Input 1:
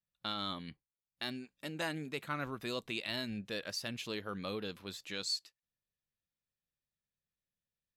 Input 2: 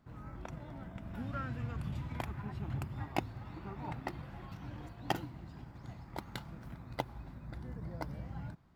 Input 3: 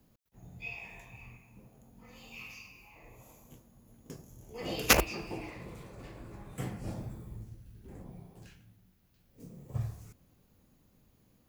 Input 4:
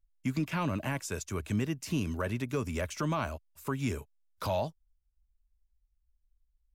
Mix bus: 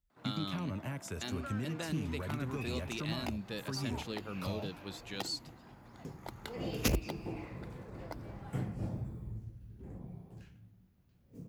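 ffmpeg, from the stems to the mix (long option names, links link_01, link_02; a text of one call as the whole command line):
ffmpeg -i stem1.wav -i stem2.wav -i stem3.wav -i stem4.wav -filter_complex "[0:a]volume=-2.5dB[link_01];[1:a]highpass=420,adelay=100,volume=-0.5dB[link_02];[2:a]highshelf=frequency=3300:gain=-8.5,adelay=1950,volume=-3dB[link_03];[3:a]acompressor=threshold=-33dB:ratio=2.5,volume=-6.5dB[link_04];[link_01][link_02][link_03][link_04]amix=inputs=4:normalize=0,highpass=50,lowshelf=frequency=280:gain=6.5,acrossover=split=420|3000[link_05][link_06][link_07];[link_06]acompressor=threshold=-42dB:ratio=6[link_08];[link_05][link_08][link_07]amix=inputs=3:normalize=0" out.wav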